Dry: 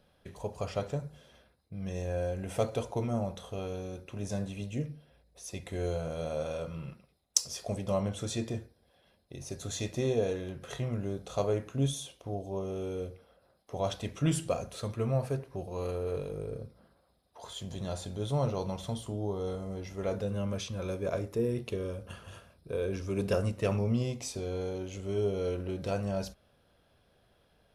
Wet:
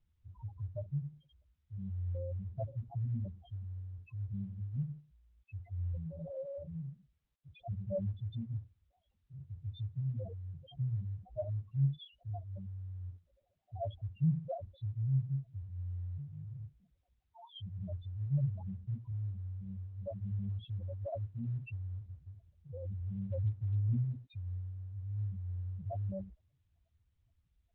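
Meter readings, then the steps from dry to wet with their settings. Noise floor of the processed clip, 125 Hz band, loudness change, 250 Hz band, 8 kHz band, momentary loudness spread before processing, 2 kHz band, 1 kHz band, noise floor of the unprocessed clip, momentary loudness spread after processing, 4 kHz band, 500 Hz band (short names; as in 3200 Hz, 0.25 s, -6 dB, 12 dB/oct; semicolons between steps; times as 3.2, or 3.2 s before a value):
-78 dBFS, 0.0 dB, -5.0 dB, -8.5 dB, under -40 dB, 12 LU, under -15 dB, -13.0 dB, -69 dBFS, 15 LU, -17.0 dB, -14.0 dB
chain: fixed phaser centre 1500 Hz, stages 6; loudest bins only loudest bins 2; gain +2.5 dB; Opus 8 kbps 48000 Hz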